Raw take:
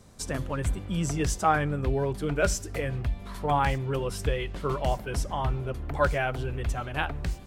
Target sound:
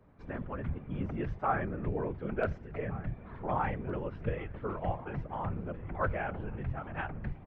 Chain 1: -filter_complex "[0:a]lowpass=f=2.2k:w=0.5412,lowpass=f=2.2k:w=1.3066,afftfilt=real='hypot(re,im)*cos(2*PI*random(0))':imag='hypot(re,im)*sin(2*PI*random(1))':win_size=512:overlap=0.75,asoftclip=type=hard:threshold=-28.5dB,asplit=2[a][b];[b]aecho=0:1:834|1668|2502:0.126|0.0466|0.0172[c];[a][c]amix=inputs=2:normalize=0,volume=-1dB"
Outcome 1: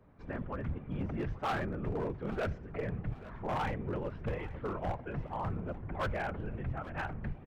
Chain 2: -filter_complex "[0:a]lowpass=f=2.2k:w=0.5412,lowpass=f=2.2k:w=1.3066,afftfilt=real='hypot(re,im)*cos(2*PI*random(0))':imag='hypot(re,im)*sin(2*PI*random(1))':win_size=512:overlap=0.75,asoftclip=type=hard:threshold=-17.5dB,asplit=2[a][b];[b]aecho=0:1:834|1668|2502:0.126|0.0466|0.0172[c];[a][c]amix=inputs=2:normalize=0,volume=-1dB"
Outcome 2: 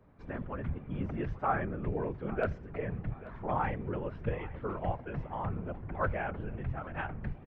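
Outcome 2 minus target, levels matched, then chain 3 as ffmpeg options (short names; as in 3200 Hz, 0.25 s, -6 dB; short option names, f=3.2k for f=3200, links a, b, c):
echo 0.627 s early
-filter_complex "[0:a]lowpass=f=2.2k:w=0.5412,lowpass=f=2.2k:w=1.3066,afftfilt=real='hypot(re,im)*cos(2*PI*random(0))':imag='hypot(re,im)*sin(2*PI*random(1))':win_size=512:overlap=0.75,asoftclip=type=hard:threshold=-17.5dB,asplit=2[a][b];[b]aecho=0:1:1461|2922|4383:0.126|0.0466|0.0172[c];[a][c]amix=inputs=2:normalize=0,volume=-1dB"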